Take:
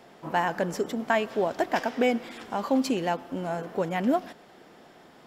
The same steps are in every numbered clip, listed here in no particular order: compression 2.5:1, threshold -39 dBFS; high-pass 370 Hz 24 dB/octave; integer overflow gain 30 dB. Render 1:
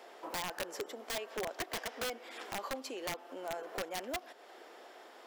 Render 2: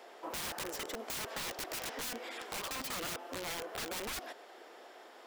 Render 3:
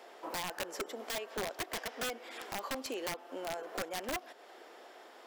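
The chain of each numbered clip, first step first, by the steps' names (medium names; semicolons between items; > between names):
compression > high-pass > integer overflow; high-pass > integer overflow > compression; high-pass > compression > integer overflow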